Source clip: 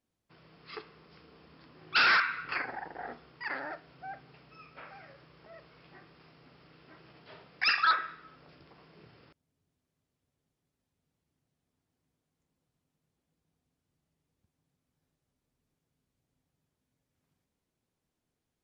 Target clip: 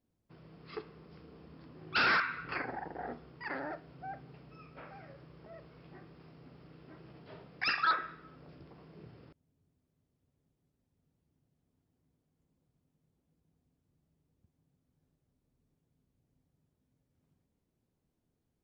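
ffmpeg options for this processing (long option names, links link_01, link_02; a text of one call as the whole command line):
ffmpeg -i in.wav -af "tiltshelf=frequency=720:gain=6.5" out.wav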